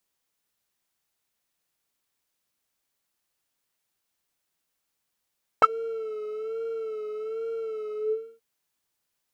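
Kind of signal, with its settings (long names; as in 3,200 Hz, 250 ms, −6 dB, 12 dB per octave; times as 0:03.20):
subtractive patch with vibrato A4, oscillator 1 square, oscillator 2 saw, interval +19 semitones, detune 26 cents, oscillator 2 level −3.5 dB, sub −24 dB, noise −18.5 dB, filter bandpass, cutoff 300 Hz, Q 9.1, filter envelope 2.5 octaves, filter decay 0.07 s, filter sustain 35%, attack 1.7 ms, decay 0.05 s, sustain −19.5 dB, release 0.47 s, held 2.31 s, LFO 1.2 Hz, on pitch 60 cents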